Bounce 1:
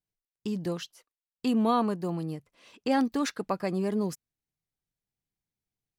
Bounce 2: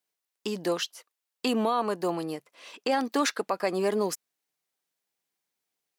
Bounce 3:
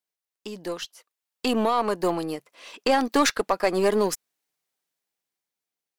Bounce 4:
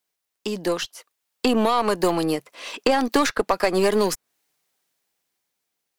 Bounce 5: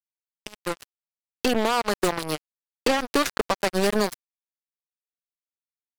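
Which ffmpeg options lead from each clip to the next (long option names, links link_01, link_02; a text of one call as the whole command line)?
ffmpeg -i in.wav -af "highpass=430,alimiter=level_in=0.5dB:limit=-24dB:level=0:latency=1:release=129,volume=-0.5dB,volume=9dB" out.wav
ffmpeg -i in.wav -af "dynaudnorm=framelen=400:gausssize=7:maxgain=8.5dB,aeval=exprs='0.447*(cos(1*acos(clip(val(0)/0.447,-1,1)))-cos(1*PI/2))+0.0316*(cos(2*acos(clip(val(0)/0.447,-1,1)))-cos(2*PI/2))+0.0126*(cos(6*acos(clip(val(0)/0.447,-1,1)))-cos(6*PI/2))+0.0158*(cos(7*acos(clip(val(0)/0.447,-1,1)))-cos(7*PI/2))':channel_layout=same,volume=-3dB" out.wav
ffmpeg -i in.wav -filter_complex "[0:a]acrossover=split=110|1800[link_01][link_02][link_03];[link_01]acompressor=threshold=-41dB:ratio=4[link_04];[link_02]acompressor=threshold=-27dB:ratio=4[link_05];[link_03]acompressor=threshold=-37dB:ratio=4[link_06];[link_04][link_05][link_06]amix=inputs=3:normalize=0,volume=9dB" out.wav
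ffmpeg -i in.wav -af "volume=13.5dB,asoftclip=hard,volume=-13.5dB,acrusher=bits=2:mix=0:aa=0.5,volume=-2.5dB" out.wav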